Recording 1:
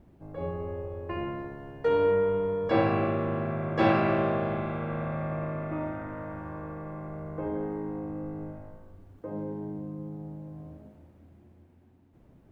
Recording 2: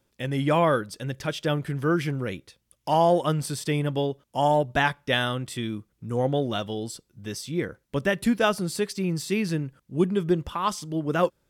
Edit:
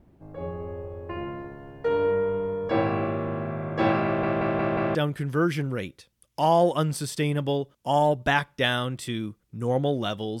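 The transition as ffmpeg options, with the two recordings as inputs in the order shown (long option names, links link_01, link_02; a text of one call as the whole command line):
ffmpeg -i cue0.wav -i cue1.wav -filter_complex "[0:a]apad=whole_dur=10.4,atrim=end=10.4,asplit=5[link_01][link_02][link_03][link_04][link_05];[link_01]atrim=end=4.232[link_06];[link_02]atrim=start=4.048:end=4.232[link_07];[link_03]atrim=start=4.048:end=4.232[link_08];[link_04]atrim=start=4.048:end=4.232[link_09];[link_05]atrim=start=4.048:end=4.232[link_10];[1:a]atrim=start=1.438:end=6.89[link_11];[link_06][link_07]acrossfade=duration=0.004:curve1=hsin:curve2=hsin[link_12];[link_12][link_08]acrossfade=duration=0.004:curve1=hsin:curve2=hsin[link_13];[link_13][link_09]acrossfade=duration=0.004:curve1=hsin:curve2=hsin[link_14];[link_14][link_10]acrossfade=duration=0.004:curve1=hsin:curve2=hsin[link_15];[link_15][link_11]acrossfade=duration=0.004:curve1=hsin:curve2=hsin" out.wav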